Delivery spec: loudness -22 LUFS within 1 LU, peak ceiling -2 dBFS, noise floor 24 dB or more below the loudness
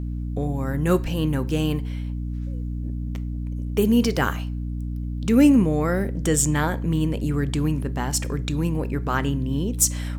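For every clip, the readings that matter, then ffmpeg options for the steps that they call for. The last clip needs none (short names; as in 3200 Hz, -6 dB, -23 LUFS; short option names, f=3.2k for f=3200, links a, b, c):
hum 60 Hz; harmonics up to 300 Hz; hum level -26 dBFS; loudness -23.5 LUFS; peak -5.0 dBFS; loudness target -22.0 LUFS
-> -af "bandreject=f=60:t=h:w=4,bandreject=f=120:t=h:w=4,bandreject=f=180:t=h:w=4,bandreject=f=240:t=h:w=4,bandreject=f=300:t=h:w=4"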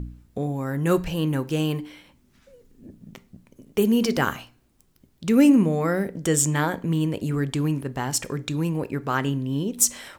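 hum none; loudness -23.5 LUFS; peak -5.5 dBFS; loudness target -22.0 LUFS
-> -af "volume=1.5dB"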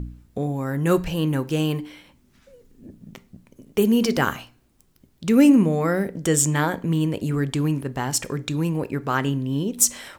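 loudness -22.0 LUFS; peak -4.0 dBFS; noise floor -60 dBFS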